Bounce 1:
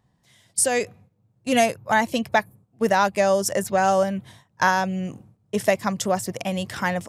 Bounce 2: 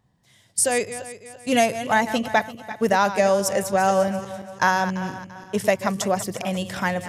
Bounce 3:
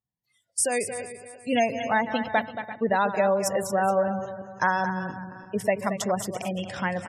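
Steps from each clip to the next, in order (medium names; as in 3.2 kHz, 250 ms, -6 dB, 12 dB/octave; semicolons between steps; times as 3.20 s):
backward echo that repeats 170 ms, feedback 60%, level -12 dB
spectral gate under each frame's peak -25 dB strong; delay 227 ms -10.5 dB; spectral noise reduction 23 dB; trim -4 dB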